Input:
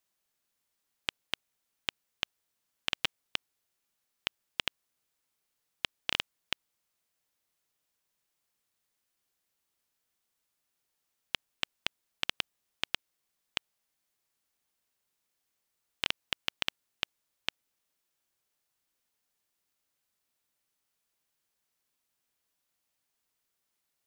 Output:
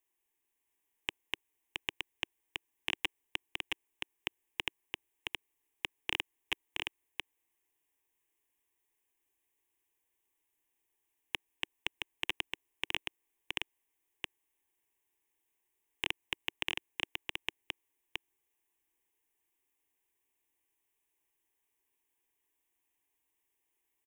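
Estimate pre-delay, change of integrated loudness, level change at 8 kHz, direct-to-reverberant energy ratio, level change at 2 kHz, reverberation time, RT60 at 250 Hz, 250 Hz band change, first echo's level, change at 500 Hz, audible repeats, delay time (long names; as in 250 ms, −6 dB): no reverb audible, −3.0 dB, −3.5 dB, no reverb audible, +0.5 dB, no reverb audible, no reverb audible, +1.0 dB, −3.5 dB, −0.5 dB, 1, 670 ms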